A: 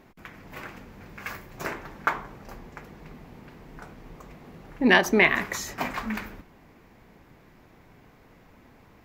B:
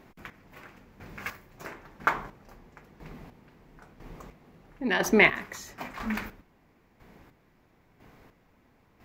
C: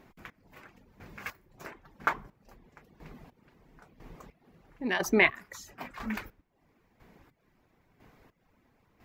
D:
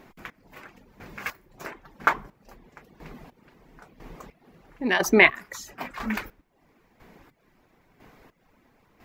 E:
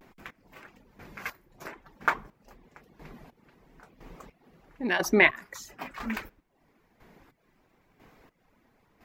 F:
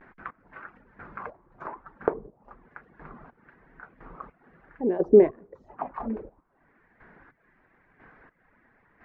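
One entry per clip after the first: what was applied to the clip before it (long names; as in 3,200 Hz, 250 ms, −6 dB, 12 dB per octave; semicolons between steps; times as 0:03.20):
square-wave tremolo 1 Hz, depth 65%, duty 30%
reverb reduction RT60 0.59 s; level −3 dB
parametric band 82 Hz −5.5 dB 1.9 octaves; level +7 dB
pitch vibrato 0.54 Hz 52 cents; level −4 dB
envelope-controlled low-pass 450–1,800 Hz down, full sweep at −31 dBFS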